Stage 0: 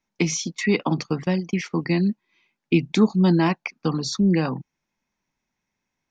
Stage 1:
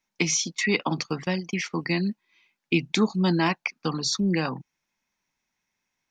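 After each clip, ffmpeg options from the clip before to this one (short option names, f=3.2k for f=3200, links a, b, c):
-af "tiltshelf=f=830:g=-4.5,volume=-1.5dB"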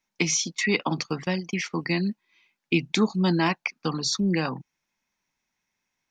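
-af anull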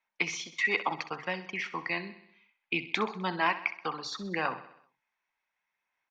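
-filter_complex "[0:a]acrossover=split=550 3100:gain=0.126 1 0.1[a][b][c];[a][b][c]amix=inputs=3:normalize=0,aphaser=in_gain=1:out_gain=1:delay=2.7:decay=0.2:speed=0.67:type=sinusoidal,aecho=1:1:64|128|192|256|320|384:0.2|0.112|0.0626|0.035|0.0196|0.011"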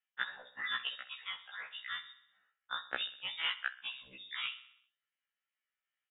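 -af "aeval=exprs='0.299*(cos(1*acos(clip(val(0)/0.299,-1,1)))-cos(1*PI/2))+0.0596*(cos(3*acos(clip(val(0)/0.299,-1,1)))-cos(3*PI/2))':c=same,lowpass=f=3.3k:t=q:w=0.5098,lowpass=f=3.3k:t=q:w=0.6013,lowpass=f=3.3k:t=q:w=0.9,lowpass=f=3.3k:t=q:w=2.563,afreqshift=-3900,afftfilt=real='re*1.73*eq(mod(b,3),0)':imag='im*1.73*eq(mod(b,3),0)':win_size=2048:overlap=0.75,volume=1dB"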